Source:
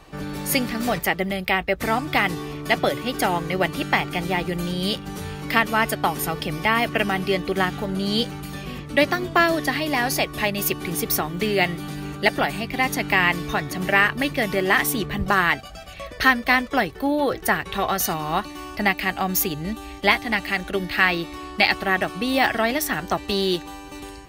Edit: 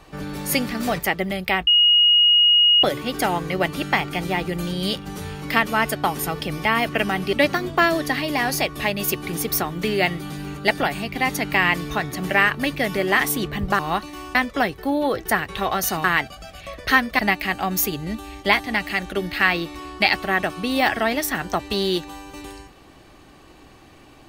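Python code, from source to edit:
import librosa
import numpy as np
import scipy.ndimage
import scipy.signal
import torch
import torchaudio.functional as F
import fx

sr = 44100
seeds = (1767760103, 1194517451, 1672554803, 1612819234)

y = fx.edit(x, sr, fx.bleep(start_s=1.67, length_s=1.16, hz=2880.0, db=-11.5),
    fx.cut(start_s=7.33, length_s=1.58),
    fx.swap(start_s=15.37, length_s=1.15, other_s=18.21, other_length_s=0.56), tone=tone)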